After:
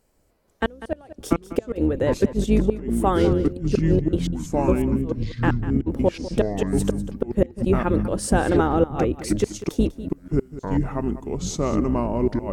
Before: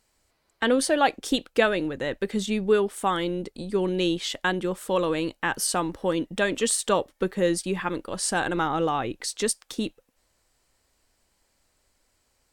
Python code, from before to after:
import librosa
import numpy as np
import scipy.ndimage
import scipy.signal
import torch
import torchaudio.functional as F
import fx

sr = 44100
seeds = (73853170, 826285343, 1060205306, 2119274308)

y = fx.octave_divider(x, sr, octaves=2, level_db=1.0)
y = fx.graphic_eq(y, sr, hz=(250, 500, 1000, 2000, 4000, 8000), db=(3, 5, -3, -5, -9, -5))
y = fx.gate_flip(y, sr, shuts_db=-11.0, range_db=-32)
y = fx.step_gate(y, sr, bpm=109, pattern='xx.x...x.', floor_db=-60.0, edge_ms=4.5, at=(3.43, 5.86), fade=0.02)
y = fx.echo_pitch(y, sr, ms=480, semitones=-5, count=2, db_per_echo=-3.0)
y = y + 10.0 ** (-14.5 / 20.0) * np.pad(y, (int(196 * sr / 1000.0), 0))[:len(y)]
y = F.gain(torch.from_numpy(y), 4.0).numpy()